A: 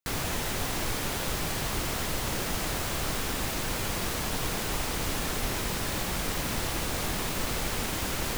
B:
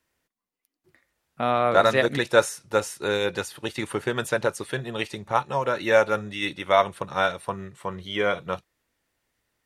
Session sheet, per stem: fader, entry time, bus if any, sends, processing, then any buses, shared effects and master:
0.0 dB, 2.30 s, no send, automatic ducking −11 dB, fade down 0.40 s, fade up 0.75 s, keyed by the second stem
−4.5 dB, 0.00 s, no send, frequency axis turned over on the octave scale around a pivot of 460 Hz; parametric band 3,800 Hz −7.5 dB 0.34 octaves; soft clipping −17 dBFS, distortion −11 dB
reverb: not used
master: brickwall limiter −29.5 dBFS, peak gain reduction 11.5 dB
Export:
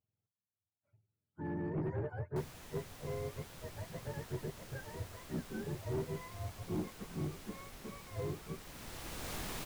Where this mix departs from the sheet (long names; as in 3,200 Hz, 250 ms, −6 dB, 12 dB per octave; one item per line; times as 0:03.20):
stem A 0.0 dB → −11.0 dB
stem B −4.5 dB → −14.5 dB